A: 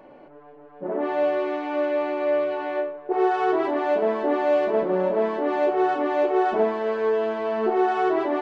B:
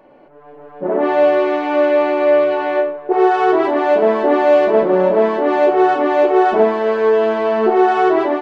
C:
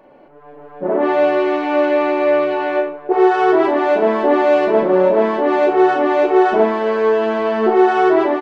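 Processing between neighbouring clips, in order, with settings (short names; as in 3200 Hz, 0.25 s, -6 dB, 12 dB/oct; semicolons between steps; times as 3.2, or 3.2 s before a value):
notches 60/120/180/240/300 Hz; AGC gain up to 11 dB
doubler 40 ms -10.5 dB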